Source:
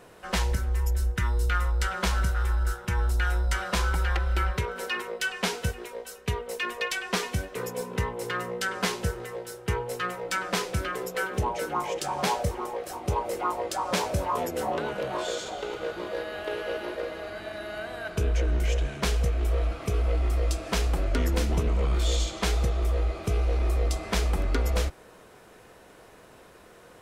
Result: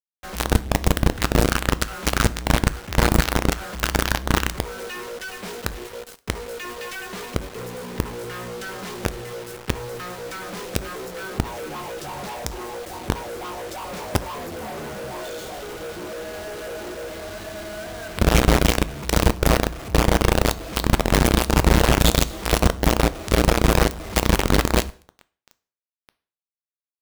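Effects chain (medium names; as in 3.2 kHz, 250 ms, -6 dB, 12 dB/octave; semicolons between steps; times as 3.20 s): tilt EQ -2 dB/octave; companded quantiser 2-bit; reverberation RT60 0.45 s, pre-delay 4 ms, DRR 14.5 dB; trim -6.5 dB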